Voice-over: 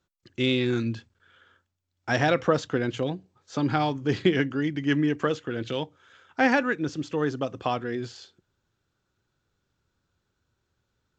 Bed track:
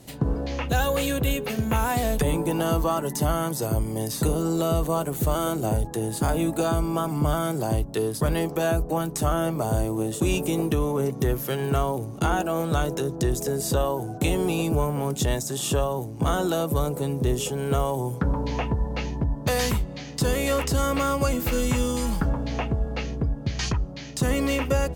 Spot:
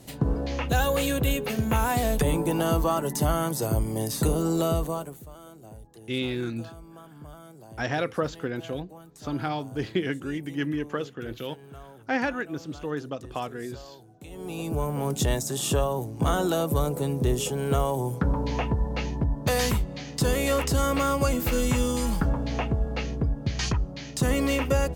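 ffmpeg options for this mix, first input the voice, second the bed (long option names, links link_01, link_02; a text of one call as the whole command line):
ffmpeg -i stem1.wav -i stem2.wav -filter_complex "[0:a]adelay=5700,volume=-5dB[link_01];[1:a]volume=20.5dB,afade=type=out:start_time=4.64:duration=0.59:silence=0.0891251,afade=type=in:start_time=14.29:duration=0.84:silence=0.0891251[link_02];[link_01][link_02]amix=inputs=2:normalize=0" out.wav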